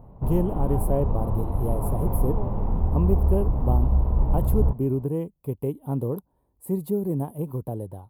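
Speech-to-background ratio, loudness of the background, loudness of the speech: -3.0 dB, -26.0 LUFS, -29.0 LUFS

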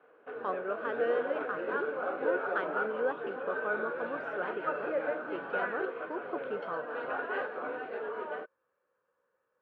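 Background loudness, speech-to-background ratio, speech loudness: -36.0 LUFS, -2.0 dB, -38.0 LUFS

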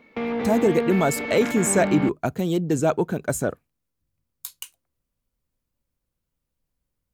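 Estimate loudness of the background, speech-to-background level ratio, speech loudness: -27.5 LUFS, 5.0 dB, -22.5 LUFS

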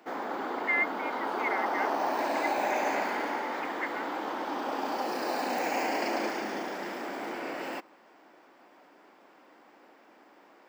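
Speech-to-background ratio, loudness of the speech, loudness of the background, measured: -3.5 dB, -35.5 LUFS, -32.0 LUFS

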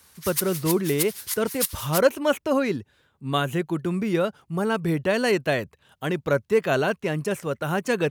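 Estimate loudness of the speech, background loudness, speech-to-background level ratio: -25.0 LUFS, -29.0 LUFS, 4.0 dB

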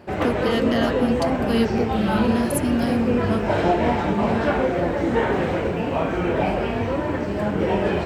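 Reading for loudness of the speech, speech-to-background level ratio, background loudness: -25.5 LUFS, -3.0 dB, -22.5 LUFS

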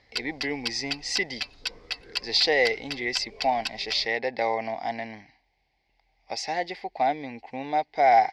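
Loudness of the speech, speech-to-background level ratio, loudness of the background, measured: -27.0 LUFS, 6.5 dB, -33.5 LUFS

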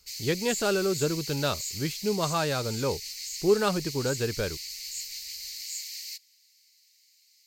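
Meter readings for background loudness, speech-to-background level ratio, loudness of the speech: -35.0 LUFS, 6.0 dB, -29.0 LUFS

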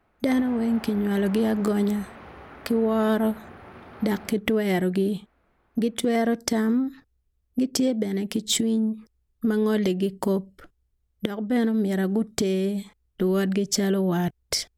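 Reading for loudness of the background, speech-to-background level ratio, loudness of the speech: -44.0 LUFS, 19.0 dB, -25.0 LUFS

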